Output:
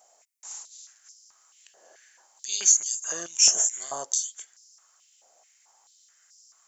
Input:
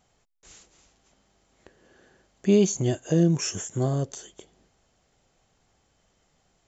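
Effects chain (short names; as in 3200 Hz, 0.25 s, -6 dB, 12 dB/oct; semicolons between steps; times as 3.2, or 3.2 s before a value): resonant high shelf 4700 Hz +11 dB, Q 1.5; stepped high-pass 4.6 Hz 660–5200 Hz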